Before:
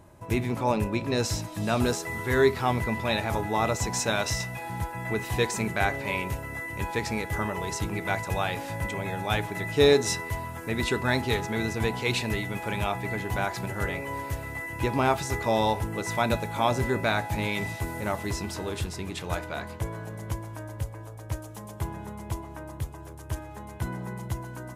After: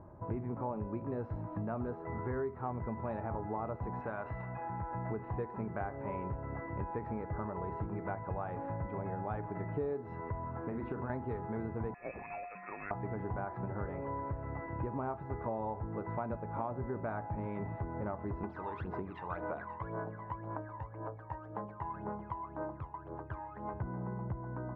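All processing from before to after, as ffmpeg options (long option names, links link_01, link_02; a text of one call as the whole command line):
ffmpeg -i in.wav -filter_complex "[0:a]asettb=1/sr,asplit=3[link_01][link_02][link_03];[link_01]atrim=end=4.014[link_04];[link_02]atrim=start=4.01:end=4.91,asetpts=PTS-STARTPTS,afade=type=in:duration=0.004:curve=qsin,afade=type=out:start_time=0.896:duration=0.004:curve=qsin,lowpass=2800,tiltshelf=frequency=1100:gain=-5,acompressor=threshold=-34dB:ratio=1.5:attack=3.2:release=140:knee=1:detection=peak[link_05];[link_03]atrim=start=4.906[link_06];[link_04][link_05]acrossfade=duration=0.004:curve1=hsin:curve2=qsin[link_07];[link_07][link_06]acrossfade=duration=0.004:curve1=qsin:curve2=hsin,asettb=1/sr,asplit=3[link_08][link_09][link_10];[link_08]atrim=end=10.474[link_11];[link_09]atrim=start=10.47:end=11.1,asetpts=PTS-STARTPTS,afade=type=in:duration=0.004:curve=qsin,afade=type=out:start_time=0.626:duration=0.004:curve=qsin,highpass=95,acompressor=threshold=-28dB:ratio=6:attack=3.2:release=140:knee=1:detection=peak,asplit=2[link_12][link_13];[link_13]adelay=39,volume=-8dB[link_14];[link_12][link_14]amix=inputs=2:normalize=0,atrim=end_sample=27783[link_15];[link_10]atrim=start=11.096[link_16];[link_11][link_15]acrossfade=duration=0.004:curve1=hsin:curve2=qsin[link_17];[link_17][link_16]acrossfade=duration=0.004:curve1=qsin:curve2=hsin,asettb=1/sr,asplit=3[link_18][link_19][link_20];[link_18]atrim=end=11.944[link_21];[link_19]atrim=start=11.94:end=12.91,asetpts=PTS-STARTPTS,afade=type=in:duration=0.004:curve=qsin,afade=type=out:start_time=0.966:duration=0.004:curve=qsin,equalizer=frequency=1600:width=0.42:gain=-6.5,lowpass=frequency=2300:width_type=q:width=0.5098,lowpass=frequency=2300:width_type=q:width=0.6013,lowpass=frequency=2300:width_type=q:width=0.9,lowpass=frequency=2300:width_type=q:width=2.563,afreqshift=-2700[link_22];[link_20]atrim=start=12.906[link_23];[link_21][link_22]acrossfade=duration=0.004:curve1=hsin:curve2=qsin[link_24];[link_24][link_23]acrossfade=duration=0.004:curve1=qsin:curve2=hsin,asettb=1/sr,asplit=3[link_25][link_26][link_27];[link_25]atrim=end=18.434[link_28];[link_26]atrim=start=18.43:end=23.74,asetpts=PTS-STARTPTS,afade=type=in:duration=0.004:curve=qsin,afade=type=out:start_time=5.306:duration=0.004:curve=qsin,highpass=frequency=590:poles=1,aphaser=in_gain=1:out_gain=1:delay=1.1:decay=0.72:speed=1.9:type=sinusoidal,aemphasis=mode=production:type=75fm[link_29];[link_27]atrim=start=23.736[link_30];[link_28][link_29]acrossfade=duration=0.004:curve1=hsin:curve2=qsin[link_31];[link_31][link_30]acrossfade=duration=0.004:curve1=qsin:curve2=hsin,lowpass=frequency=1300:width=0.5412,lowpass=frequency=1300:width=1.3066,acompressor=threshold=-35dB:ratio=6" out.wav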